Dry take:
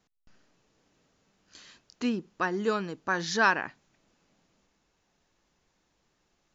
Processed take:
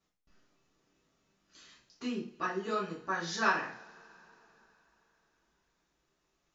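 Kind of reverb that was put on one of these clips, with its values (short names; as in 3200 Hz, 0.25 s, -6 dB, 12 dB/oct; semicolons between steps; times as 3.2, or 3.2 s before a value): two-slope reverb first 0.4 s, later 3.7 s, from -28 dB, DRR -7 dB; gain -12.5 dB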